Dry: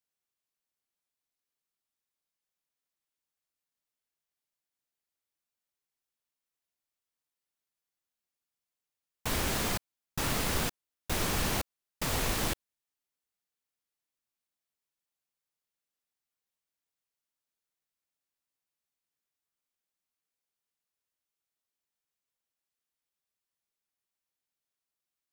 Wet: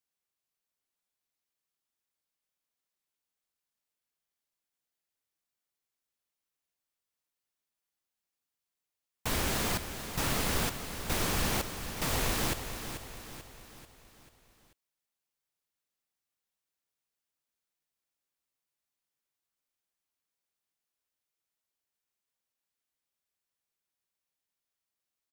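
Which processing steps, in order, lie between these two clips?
repeating echo 439 ms, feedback 49%, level −9.5 dB

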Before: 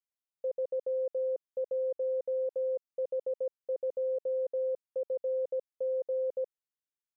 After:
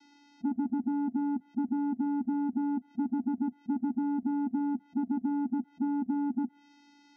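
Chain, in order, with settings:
treble cut that deepens with the level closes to 350 Hz, closed at −29 dBFS
channel vocoder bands 8, square 287 Hz
formants moved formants −4 semitones
envelope flattener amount 70%
level +6 dB

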